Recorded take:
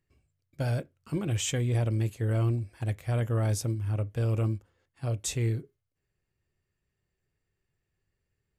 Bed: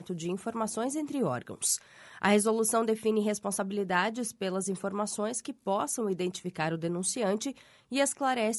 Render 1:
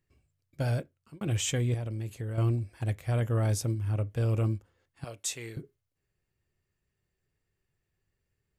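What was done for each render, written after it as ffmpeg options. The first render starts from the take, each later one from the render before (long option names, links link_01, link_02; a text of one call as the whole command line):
ffmpeg -i in.wav -filter_complex "[0:a]asettb=1/sr,asplit=3[link_01][link_02][link_03];[link_01]atrim=end=1.744[link_04];[link_02]atrim=start=1.74:end=2.38,asetpts=PTS-STARTPTS,afade=type=in:duration=0.004:curve=qsin,afade=type=out:start_time=0.636:duration=0.004:curve=qsin,acompressor=threshold=-32dB:ratio=6:attack=3.2:release=140:knee=1:detection=peak[link_05];[link_03]atrim=start=2.376[link_06];[link_04][link_05]acrossfade=duration=0.004:curve1=hsin:curve2=qsin[link_07];[link_07][link_06]acrossfade=duration=0.004:curve1=qsin:curve2=hsin,asettb=1/sr,asplit=3[link_08][link_09][link_10];[link_08]atrim=end=5.044[link_11];[link_09]atrim=start=5.04:end=5.57,asetpts=PTS-STARTPTS,afade=type=in:duration=0.004:curve=qsin,afade=type=out:start_time=0.526:duration=0.004:curve=qsin,highpass=frequency=1000:poles=1[link_12];[link_10]atrim=start=5.566[link_13];[link_11][link_12]acrossfade=duration=0.004:curve1=hsin:curve2=qsin[link_14];[link_14][link_13]acrossfade=duration=0.004:curve1=qsin:curve2=hsin,asplit=2[link_15][link_16];[link_15]atrim=end=1.21,asetpts=PTS-STARTPTS,afade=type=out:start_time=0.75:duration=0.46[link_17];[link_16]atrim=start=1.21,asetpts=PTS-STARTPTS,afade=type=in:duration=0.004:curve=hsin[link_18];[link_17][link_18]concat=n=2:v=0:a=1" out.wav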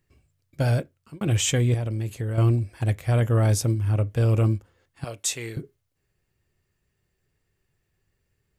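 ffmpeg -i in.wav -af "volume=7dB" out.wav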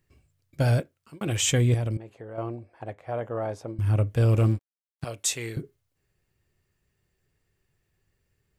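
ffmpeg -i in.wav -filter_complex "[0:a]asettb=1/sr,asplit=3[link_01][link_02][link_03];[link_01]atrim=end=0.804[link_04];[link_02]atrim=start=0.8:end=1.43,asetpts=PTS-STARTPTS,afade=type=in:duration=0.004:curve=qsin,afade=type=out:start_time=0.626:duration=0.004:curve=qsin,lowshelf=frequency=180:gain=-10[link_05];[link_03]atrim=start=1.426[link_06];[link_04][link_05]acrossfade=duration=0.004:curve1=hsin:curve2=qsin[link_07];[link_07][link_06]acrossfade=duration=0.004:curve1=qsin:curve2=hsin,asettb=1/sr,asplit=3[link_08][link_09][link_10];[link_08]atrim=end=1.974[link_11];[link_09]atrim=start=1.97:end=3.79,asetpts=PTS-STARTPTS,afade=type=in:duration=0.004:curve=qsin,afade=type=out:start_time=1.816:duration=0.004:curve=qsin,bandpass=frequency=720:width_type=q:width=1.4[link_12];[link_10]atrim=start=3.786[link_13];[link_11][link_12]acrossfade=duration=0.004:curve1=hsin:curve2=qsin[link_14];[link_14][link_13]acrossfade=duration=0.004:curve1=qsin:curve2=hsin,asettb=1/sr,asplit=3[link_15][link_16][link_17];[link_15]atrim=end=4.324[link_18];[link_16]atrim=start=4.32:end=5.05,asetpts=PTS-STARTPTS,afade=type=in:duration=0.004:curve=qsin,afade=type=out:start_time=0.726:duration=0.004:curve=qsin,aeval=exprs='sgn(val(0))*max(abs(val(0))-0.00841,0)':channel_layout=same[link_19];[link_17]atrim=start=5.046[link_20];[link_18][link_19]acrossfade=duration=0.004:curve1=hsin:curve2=qsin[link_21];[link_21][link_20]acrossfade=duration=0.004:curve1=qsin:curve2=hsin" out.wav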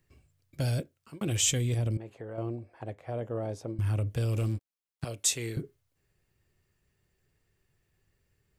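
ffmpeg -i in.wav -filter_complex "[0:a]acrossover=split=530|2800[link_01][link_02][link_03];[link_01]alimiter=limit=-24dB:level=0:latency=1[link_04];[link_02]acompressor=threshold=-45dB:ratio=6[link_05];[link_04][link_05][link_03]amix=inputs=3:normalize=0" out.wav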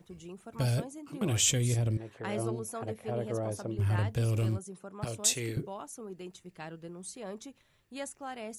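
ffmpeg -i in.wav -i bed.wav -filter_complex "[1:a]volume=-12.5dB[link_01];[0:a][link_01]amix=inputs=2:normalize=0" out.wav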